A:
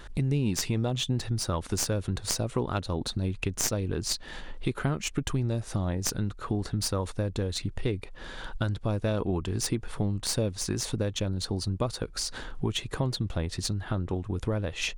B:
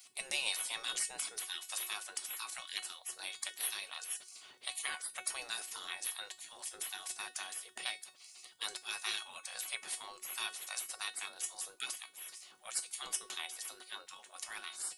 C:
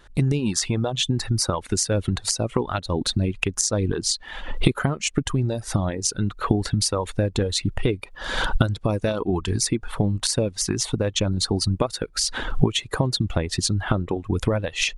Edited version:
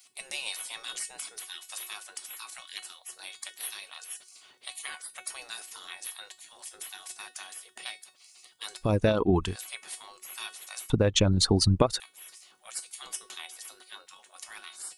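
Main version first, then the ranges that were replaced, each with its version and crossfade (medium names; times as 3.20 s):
B
8.86–9.48 s: from C, crossfade 0.16 s
10.90–12.00 s: from C
not used: A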